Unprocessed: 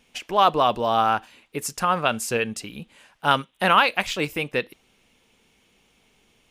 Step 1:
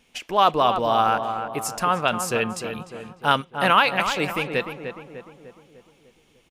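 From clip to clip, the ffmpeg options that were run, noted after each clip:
ffmpeg -i in.wav -filter_complex "[0:a]asplit=2[link_01][link_02];[link_02]adelay=300,lowpass=frequency=1900:poles=1,volume=-7.5dB,asplit=2[link_03][link_04];[link_04]adelay=300,lowpass=frequency=1900:poles=1,volume=0.54,asplit=2[link_05][link_06];[link_06]adelay=300,lowpass=frequency=1900:poles=1,volume=0.54,asplit=2[link_07][link_08];[link_08]adelay=300,lowpass=frequency=1900:poles=1,volume=0.54,asplit=2[link_09][link_10];[link_10]adelay=300,lowpass=frequency=1900:poles=1,volume=0.54,asplit=2[link_11][link_12];[link_12]adelay=300,lowpass=frequency=1900:poles=1,volume=0.54,asplit=2[link_13][link_14];[link_14]adelay=300,lowpass=frequency=1900:poles=1,volume=0.54[link_15];[link_01][link_03][link_05][link_07][link_09][link_11][link_13][link_15]amix=inputs=8:normalize=0" out.wav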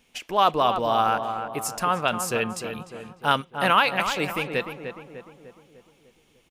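ffmpeg -i in.wav -af "highshelf=frequency=12000:gain=5.5,volume=-2dB" out.wav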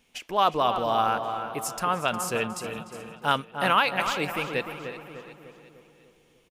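ffmpeg -i in.wav -af "aecho=1:1:360|720|1080|1440:0.188|0.0904|0.0434|0.0208,volume=-2.5dB" out.wav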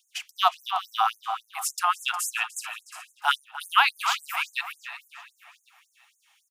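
ffmpeg -i in.wav -af "bandreject=frequency=660:width=12,afftfilt=real='re*gte(b*sr/1024,620*pow(6300/620,0.5+0.5*sin(2*PI*3.6*pts/sr)))':imag='im*gte(b*sr/1024,620*pow(6300/620,0.5+0.5*sin(2*PI*3.6*pts/sr)))':win_size=1024:overlap=0.75,volume=4dB" out.wav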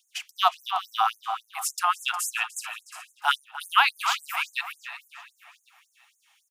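ffmpeg -i in.wav -af "bandreject=frequency=60:width_type=h:width=6,bandreject=frequency=120:width_type=h:width=6,bandreject=frequency=180:width_type=h:width=6,bandreject=frequency=240:width_type=h:width=6,bandreject=frequency=300:width_type=h:width=6,bandreject=frequency=360:width_type=h:width=6,bandreject=frequency=420:width_type=h:width=6,bandreject=frequency=480:width_type=h:width=6" out.wav

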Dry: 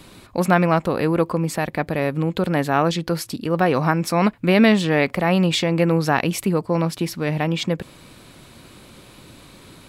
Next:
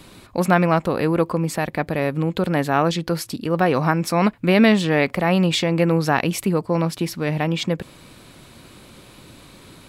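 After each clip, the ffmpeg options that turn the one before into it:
ffmpeg -i in.wav -af anull out.wav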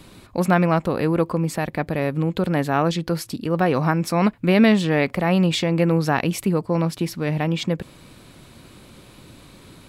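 ffmpeg -i in.wav -af "lowshelf=frequency=330:gain=3.5,volume=-2.5dB" out.wav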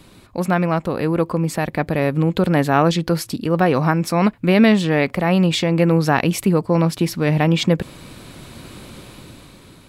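ffmpeg -i in.wav -af "dynaudnorm=framelen=200:gausssize=11:maxgain=15.5dB,volume=-1dB" out.wav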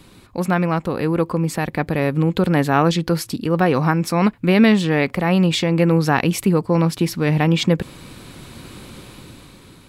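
ffmpeg -i in.wav -af "equalizer=frequency=630:width_type=o:width=0.23:gain=-5.5" out.wav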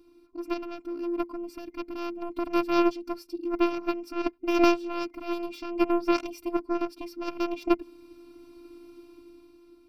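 ffmpeg -i in.wav -af "aeval=exprs='0.841*(cos(1*acos(clip(val(0)/0.841,-1,1)))-cos(1*PI/2))+0.335*(cos(3*acos(clip(val(0)/0.841,-1,1)))-cos(3*PI/2))':channel_layout=same,afftfilt=real='hypot(re,im)*cos(PI*b)':imag='0':win_size=512:overlap=0.75,superequalizer=6b=3.98:11b=0.282:13b=0.447:15b=0.282:16b=0.398" out.wav

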